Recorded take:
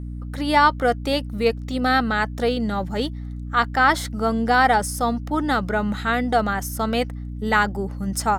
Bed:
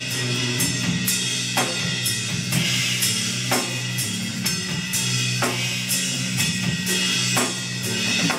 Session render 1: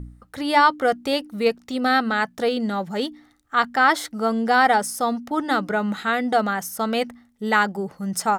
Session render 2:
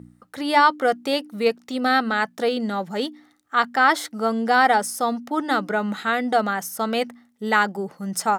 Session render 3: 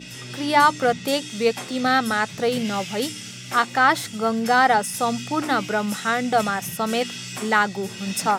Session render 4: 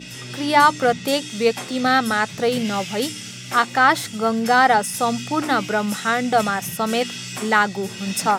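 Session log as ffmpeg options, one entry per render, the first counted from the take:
-af "bandreject=f=60:t=h:w=4,bandreject=f=120:t=h:w=4,bandreject=f=180:t=h:w=4,bandreject=f=240:t=h:w=4,bandreject=f=300:t=h:w=4"
-af "highpass=170"
-filter_complex "[1:a]volume=-12.5dB[a];[0:a][a]amix=inputs=2:normalize=0"
-af "volume=2dB"

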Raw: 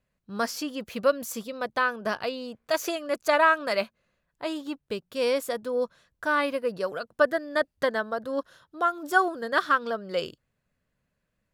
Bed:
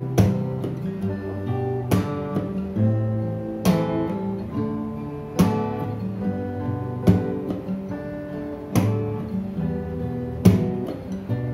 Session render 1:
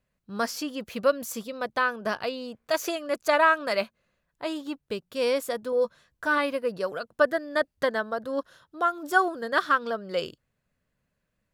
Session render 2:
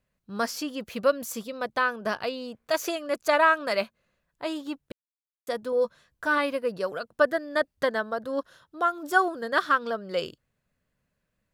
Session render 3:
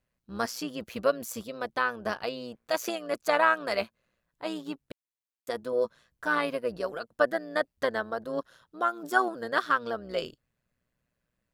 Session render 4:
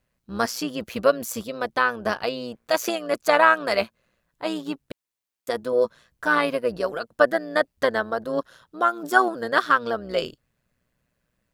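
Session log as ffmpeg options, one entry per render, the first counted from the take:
-filter_complex "[0:a]asettb=1/sr,asplit=3[a][b][c];[a]atrim=end=5.714[d];[b]atrim=start=5.71:end=6.38,asetpts=PTS-STARTPTS,afade=t=in:d=0.004:c=qsin,afade=t=out:st=0.666:d=0.004:c=qsin,asplit=2[e][f];[f]adelay=14,volume=-6.5dB[g];[e][g]amix=inputs=2:normalize=0,atrim=end_sample=29547[h];[c]atrim=start=6.376[i];[d][h]acrossfade=d=0.004:c1=hsin:c2=qsin[j];[j][i]acrossfade=d=0.004:c1=qsin:c2=hsin"
-filter_complex "[0:a]asplit=3[a][b][c];[a]atrim=end=4.92,asetpts=PTS-STARTPTS,afade=t=out:st=4.916:d=0.004:c=hsin[d];[b]atrim=start=4.92:end=5.47,asetpts=PTS-STARTPTS,volume=0[e];[c]atrim=start=5.47,asetpts=PTS-STARTPTS,afade=t=in:d=0.004:c=hsin[f];[d][e][f]concat=n=3:v=0:a=1"
-af "tremolo=f=120:d=0.621"
-af "volume=6.5dB"

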